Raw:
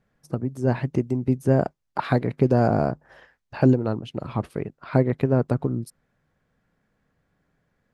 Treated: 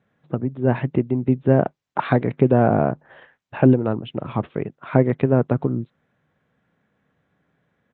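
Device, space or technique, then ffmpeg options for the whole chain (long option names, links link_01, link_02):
Bluetooth headset: -af "highpass=100,aresample=8000,aresample=44100,volume=3.5dB" -ar 16000 -c:a sbc -b:a 64k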